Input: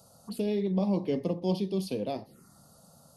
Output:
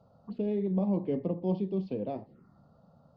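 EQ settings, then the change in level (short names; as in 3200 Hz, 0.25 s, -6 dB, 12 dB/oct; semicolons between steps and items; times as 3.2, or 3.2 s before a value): air absorption 170 m; tape spacing loss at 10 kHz 32 dB; 0.0 dB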